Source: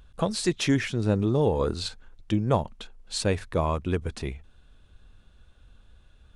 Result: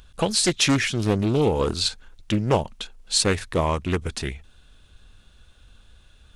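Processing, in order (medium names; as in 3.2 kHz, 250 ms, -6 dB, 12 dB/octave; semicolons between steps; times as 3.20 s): treble shelf 2.1 kHz +10 dB; loudspeaker Doppler distortion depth 0.49 ms; trim +2 dB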